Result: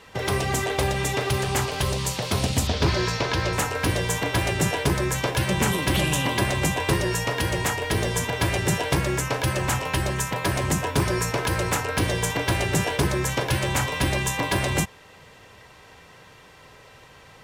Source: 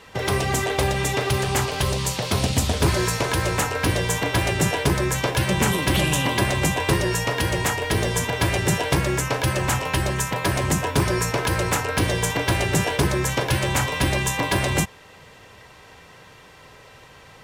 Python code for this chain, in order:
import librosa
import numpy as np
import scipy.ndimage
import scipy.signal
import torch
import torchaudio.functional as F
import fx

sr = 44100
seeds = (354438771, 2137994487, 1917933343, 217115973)

y = fx.high_shelf_res(x, sr, hz=6900.0, db=-12.0, q=1.5, at=(2.67, 3.53))
y = y * 10.0 ** (-2.0 / 20.0)